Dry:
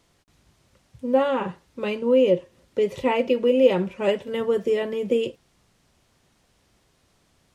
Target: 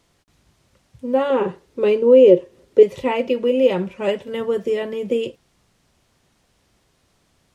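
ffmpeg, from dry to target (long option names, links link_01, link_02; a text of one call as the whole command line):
ffmpeg -i in.wav -filter_complex "[0:a]asettb=1/sr,asplit=3[link_01][link_02][link_03];[link_01]atrim=end=1.304[link_04];[link_02]atrim=start=1.3:end=2.83,asetpts=PTS-STARTPTS,afade=type=in:duration=0.004:curve=qsin,afade=type=out:start_time=1.526:duration=0.004:curve=qsin,equalizer=frequency=410:width_type=o:width=0.7:gain=12.5[link_05];[link_03]atrim=start=2.826[link_06];[link_04][link_05]acrossfade=duration=0.004:curve1=hsin:curve2=qsin[link_07];[link_07][link_06]acrossfade=duration=0.004:curve1=qsin:curve2=hsin,volume=1dB" out.wav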